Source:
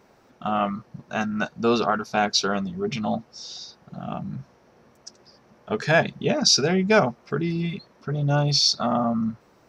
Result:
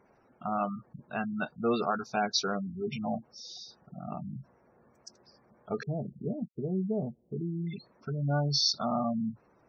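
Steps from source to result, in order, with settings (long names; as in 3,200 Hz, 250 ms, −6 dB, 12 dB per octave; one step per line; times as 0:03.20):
gate on every frequency bin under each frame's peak −20 dB strong
0:05.83–0:07.67: Gaussian smoothing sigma 18 samples
level −7 dB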